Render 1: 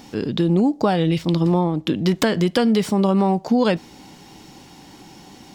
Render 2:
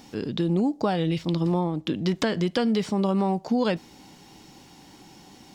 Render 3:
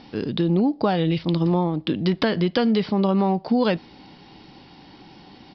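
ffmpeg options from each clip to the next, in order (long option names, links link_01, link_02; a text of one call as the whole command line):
ffmpeg -i in.wav -filter_complex "[0:a]highshelf=frequency=6400:gain=4.5,acrossover=split=7300[link_01][link_02];[link_02]acompressor=threshold=-55dB:ratio=4:attack=1:release=60[link_03];[link_01][link_03]amix=inputs=2:normalize=0,volume=-6dB" out.wav
ffmpeg -i in.wav -af "aresample=11025,aresample=44100,volume=3.5dB" out.wav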